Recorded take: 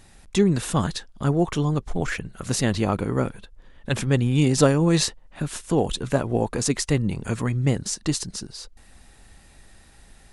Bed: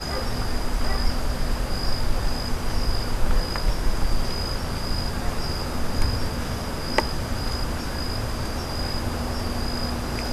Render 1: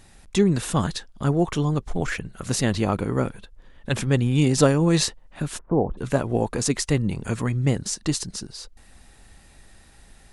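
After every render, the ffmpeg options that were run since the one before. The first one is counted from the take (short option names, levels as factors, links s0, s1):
-filter_complex "[0:a]asplit=3[s0][s1][s2];[s0]afade=t=out:st=5.57:d=0.02[s3];[s1]lowpass=f=1100:w=0.5412,lowpass=f=1100:w=1.3066,afade=t=in:st=5.57:d=0.02,afade=t=out:st=5.97:d=0.02[s4];[s2]afade=t=in:st=5.97:d=0.02[s5];[s3][s4][s5]amix=inputs=3:normalize=0"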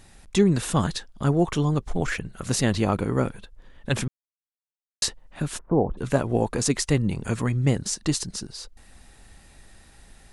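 -filter_complex "[0:a]asplit=3[s0][s1][s2];[s0]atrim=end=4.08,asetpts=PTS-STARTPTS,afade=t=out:st=4.076:d=0.004:c=hsin[s3];[s1]atrim=start=4.08:end=5.02,asetpts=PTS-STARTPTS,volume=0[s4];[s2]atrim=start=5.02,asetpts=PTS-STARTPTS,afade=t=in:d=0.004:c=hsin[s5];[s3][s4][s5]concat=n=3:v=0:a=1"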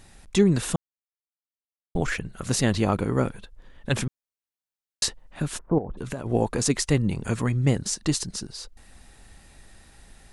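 -filter_complex "[0:a]asettb=1/sr,asplit=3[s0][s1][s2];[s0]atrim=end=5.784[s3];[s1]atrim=start=5.78:end=6.26,asetpts=PTS-STARTPTS,afade=t=in:d=0.004:c=qsin,afade=t=out:st=0.476:d=0.004:c=qsin,acompressor=threshold=0.0447:ratio=12:attack=3.2:release=140:knee=1:detection=peak[s4];[s2]atrim=start=6.256[s5];[s3][s4]acrossfade=d=0.004:c1=hsin:c2=qsin[s6];[s6][s5]acrossfade=d=0.004:c1=qsin:c2=hsin,asplit=3[s7][s8][s9];[s7]atrim=end=0.76,asetpts=PTS-STARTPTS,afade=t=out:st=0.756:d=0.004:c=hsin[s10];[s8]atrim=start=0.76:end=1.95,asetpts=PTS-STARTPTS,volume=0[s11];[s9]atrim=start=1.95,asetpts=PTS-STARTPTS,afade=t=in:d=0.004:c=hsin[s12];[s10][s11][s12]concat=n=3:v=0:a=1"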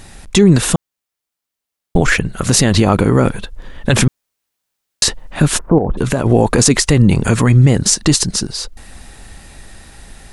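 -af "dynaudnorm=f=290:g=17:m=1.68,alimiter=level_in=4.73:limit=0.891:release=50:level=0:latency=1"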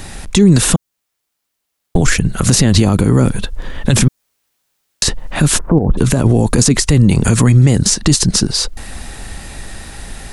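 -filter_complex "[0:a]acrossover=split=290|4500[s0][s1][s2];[s0]acompressor=threshold=0.178:ratio=4[s3];[s1]acompressor=threshold=0.0447:ratio=4[s4];[s2]acompressor=threshold=0.0794:ratio=4[s5];[s3][s4][s5]amix=inputs=3:normalize=0,alimiter=level_in=2.51:limit=0.891:release=50:level=0:latency=1"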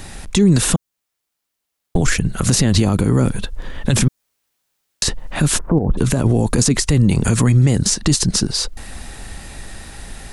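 -af "volume=0.631"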